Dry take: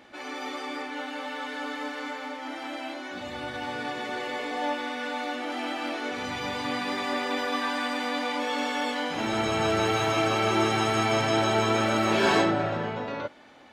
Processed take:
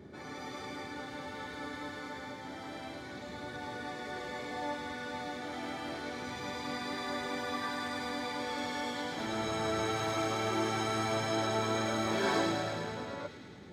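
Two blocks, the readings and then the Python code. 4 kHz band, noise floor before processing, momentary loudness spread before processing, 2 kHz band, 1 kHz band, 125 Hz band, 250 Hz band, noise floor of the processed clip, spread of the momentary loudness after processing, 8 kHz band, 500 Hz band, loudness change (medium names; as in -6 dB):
-8.0 dB, -39 dBFS, 12 LU, -8.5 dB, -8.0 dB, -7.0 dB, -7.5 dB, -46 dBFS, 11 LU, -5.0 dB, -8.0 dB, -8.0 dB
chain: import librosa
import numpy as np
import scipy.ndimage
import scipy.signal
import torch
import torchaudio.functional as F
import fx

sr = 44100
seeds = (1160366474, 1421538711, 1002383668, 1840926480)

y = fx.peak_eq(x, sr, hz=2700.0, db=-10.0, octaves=0.3)
y = fx.notch(y, sr, hz=3000.0, q=20.0)
y = fx.dmg_noise_band(y, sr, seeds[0], low_hz=69.0, high_hz=450.0, level_db=-43.0)
y = fx.echo_wet_highpass(y, sr, ms=107, feedback_pct=75, hz=2400.0, wet_db=-3)
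y = F.gain(torch.from_numpy(y), -8.0).numpy()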